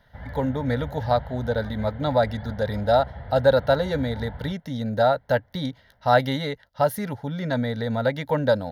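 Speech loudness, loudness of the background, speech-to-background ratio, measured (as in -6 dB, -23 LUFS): -24.5 LUFS, -39.0 LUFS, 14.5 dB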